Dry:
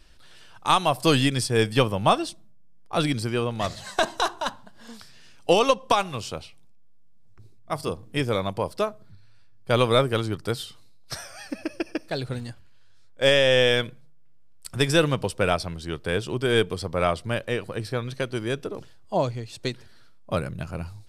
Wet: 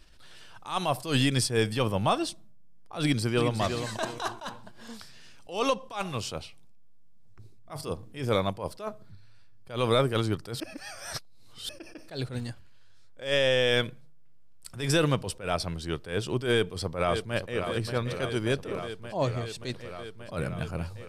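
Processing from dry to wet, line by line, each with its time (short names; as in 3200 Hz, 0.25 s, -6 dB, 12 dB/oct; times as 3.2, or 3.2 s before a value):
3.01–3.6 echo throw 0.36 s, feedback 35%, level -8 dB
10.6–11.69 reverse
16.5–17.64 echo throw 0.58 s, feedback 80%, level -12 dB
whole clip: limiter -13.5 dBFS; attack slew limiter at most 150 dB/s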